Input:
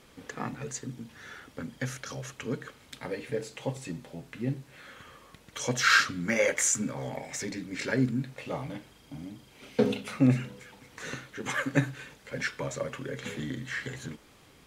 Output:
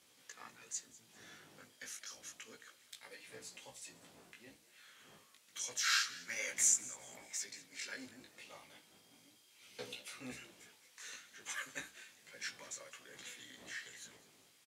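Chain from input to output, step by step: octave divider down 1 oct, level 0 dB; wind noise 200 Hz -37 dBFS; pre-emphasis filter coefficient 0.9; chorus 0.3 Hz, delay 16 ms, depth 3.4 ms; frequency weighting A; frequency-shifting echo 199 ms, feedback 33%, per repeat +89 Hz, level -18.5 dB; trim +1 dB

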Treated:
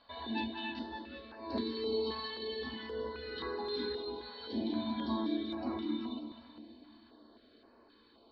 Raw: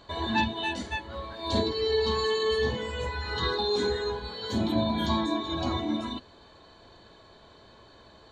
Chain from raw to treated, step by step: steep low-pass 5.2 kHz 96 dB/octave; resonant low shelf 200 Hz -8.5 dB, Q 3; feedback comb 230 Hz, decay 0.97 s, mix 70%; two-band feedback delay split 380 Hz, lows 326 ms, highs 196 ms, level -9 dB; step-sequenced notch 3.8 Hz 350–3400 Hz

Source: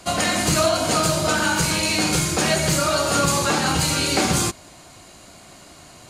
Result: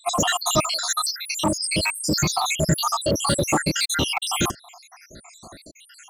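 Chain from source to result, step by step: random holes in the spectrogram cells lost 82%; 0.63–1.40 s: high-pass 1.5 kHz 12 dB/octave; in parallel at -5 dB: hard clipper -26 dBFS, distortion -8 dB; on the sum: trim +2.5 dB

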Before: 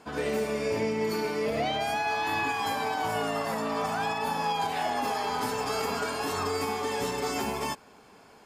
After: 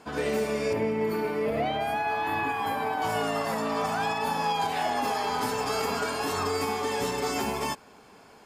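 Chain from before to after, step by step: 0.73–3.02 s: peaking EQ 5.9 kHz -14 dB 1.4 oct; trim +1.5 dB

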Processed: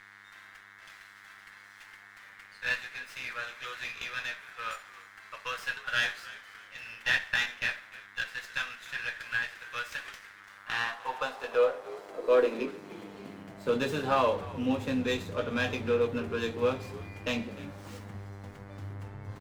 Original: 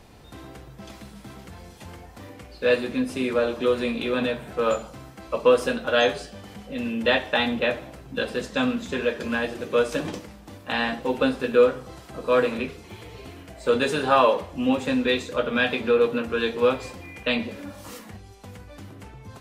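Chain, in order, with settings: mains buzz 100 Hz, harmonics 22, -42 dBFS -4 dB/octave; high-pass sweep 1.7 kHz -> 99 Hz, 10.35–14.18 s; on a send: frequency-shifting echo 302 ms, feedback 34%, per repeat -79 Hz, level -18.5 dB; on the sum: sliding maximum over 3 samples; trim -8 dB

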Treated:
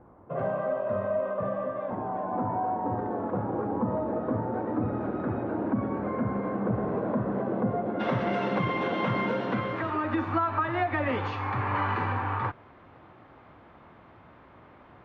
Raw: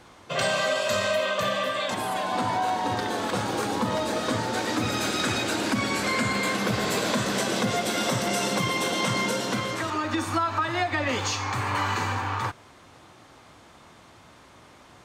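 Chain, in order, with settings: Bessel low-pass 760 Hz, order 4, from 7.99 s 1.7 kHz

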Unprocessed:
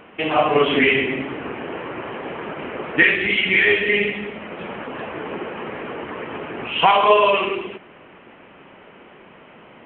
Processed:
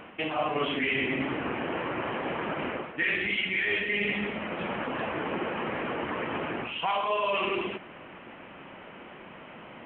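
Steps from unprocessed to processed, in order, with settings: peaking EQ 420 Hz -5 dB 0.31 oct; reverse; compression 6:1, threshold -26 dBFS, peak gain reduction 15.5 dB; reverse

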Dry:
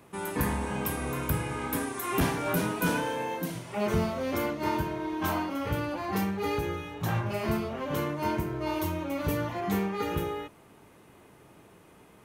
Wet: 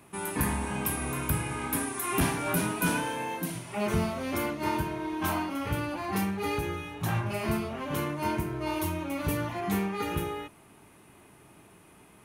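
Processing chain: graphic EQ with 31 bands 500 Hz -7 dB, 2.5 kHz +3 dB, 10 kHz +9 dB

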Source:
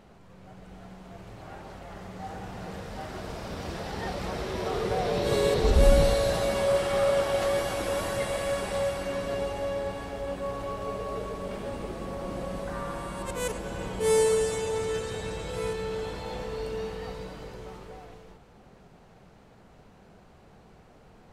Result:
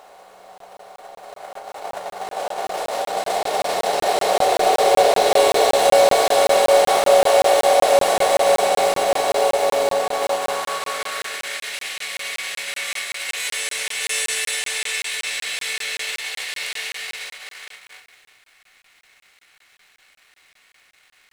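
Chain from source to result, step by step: spectral levelling over time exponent 0.4; gate -22 dBFS, range -22 dB; dynamic bell 1.2 kHz, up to -7 dB, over -40 dBFS, Q 1.1; high-pass sweep 710 Hz -> 2.1 kHz, 10.11–11.73 s; in parallel at -7.5 dB: companded quantiser 4-bit; on the sum: reverse echo 525 ms -5 dB; on a send at -5 dB: reverberation RT60 0.45 s, pre-delay 3 ms; on the sum: crackling interface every 0.19 s, samples 1024, zero, from 0.58 s; trim +2 dB

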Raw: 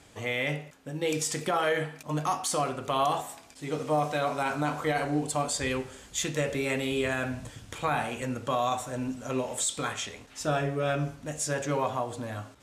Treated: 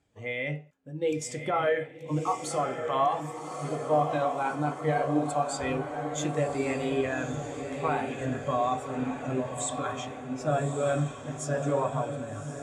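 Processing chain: echo that smears into a reverb 1172 ms, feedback 65%, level -4 dB; spectral contrast expander 1.5:1

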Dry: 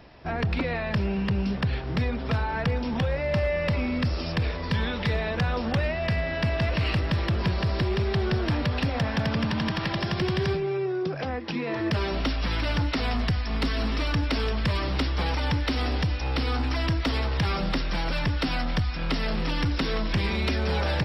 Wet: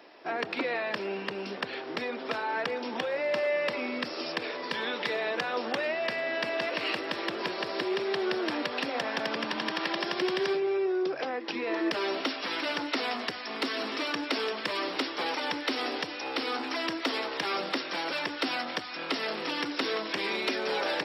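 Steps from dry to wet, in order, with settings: Chebyshev high-pass 320 Hz, order 3

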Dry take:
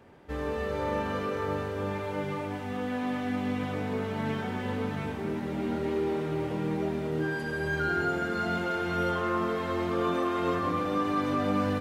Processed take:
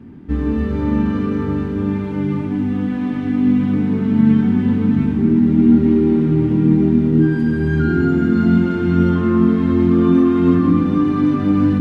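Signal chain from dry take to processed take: low-pass 3.2 kHz 6 dB/octave; resonant low shelf 380 Hz +13 dB, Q 3; hum notches 50/100/150/200/250/300 Hz; trim +4 dB

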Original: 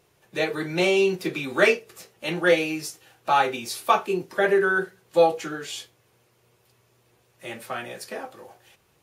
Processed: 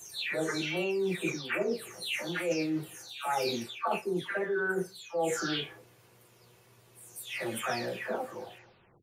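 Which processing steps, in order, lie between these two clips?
delay that grows with frequency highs early, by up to 444 ms; reverse; compression 12:1, threshold -32 dBFS, peak gain reduction 20 dB; reverse; trim +4 dB

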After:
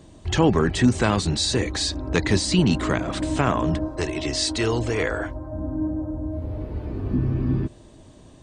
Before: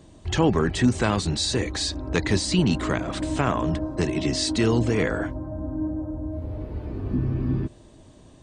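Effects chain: 3.88–5.53 s: peaking EQ 190 Hz -14 dB 1 oct; trim +2 dB

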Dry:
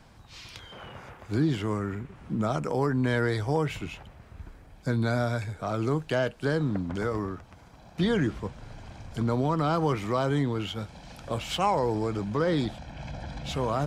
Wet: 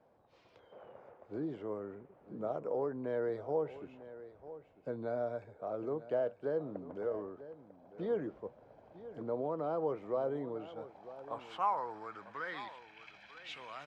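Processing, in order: band-pass sweep 530 Hz -> 2.4 kHz, 10.48–13.00 s; delay 947 ms -15 dB; trim -3 dB

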